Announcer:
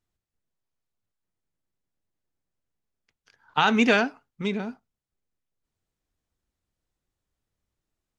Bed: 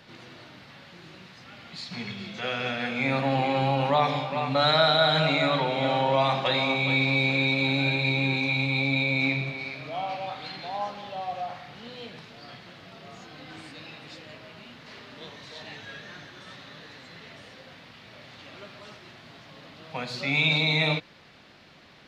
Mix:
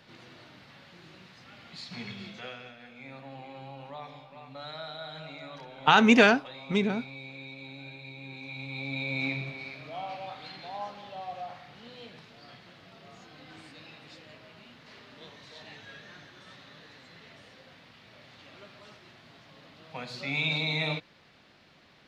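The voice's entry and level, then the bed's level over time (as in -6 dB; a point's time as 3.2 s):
2.30 s, +1.5 dB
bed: 2.28 s -4.5 dB
2.75 s -20 dB
8.17 s -20 dB
9.19 s -6 dB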